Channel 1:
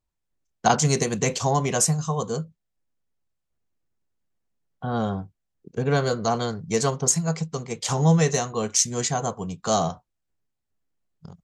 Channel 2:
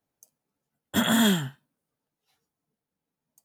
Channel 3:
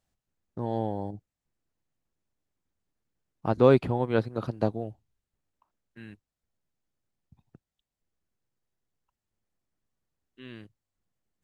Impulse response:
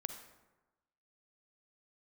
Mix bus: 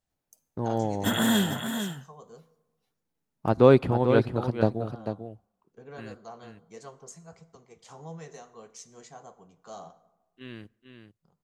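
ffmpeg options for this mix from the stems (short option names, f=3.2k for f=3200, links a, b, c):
-filter_complex "[0:a]highpass=f=450:p=1,highshelf=f=2.1k:g=-9.5,flanger=delay=5.6:depth=6.6:regen=-60:speed=1.6:shape=sinusoidal,volume=-17dB,asplit=2[a][b];[b]volume=-3dB[c];[1:a]adelay=100,volume=-5.5dB,asplit=3[d][e][f];[e]volume=-6dB[g];[f]volume=-5dB[h];[2:a]agate=range=-7dB:threshold=-48dB:ratio=16:detection=peak,volume=1.5dB,asplit=3[i][j][k];[j]volume=-19.5dB[l];[k]volume=-7.5dB[m];[3:a]atrim=start_sample=2205[n];[c][g][l]amix=inputs=3:normalize=0[o];[o][n]afir=irnorm=-1:irlink=0[p];[h][m]amix=inputs=2:normalize=0,aecho=0:1:445:1[q];[a][d][i][p][q]amix=inputs=5:normalize=0"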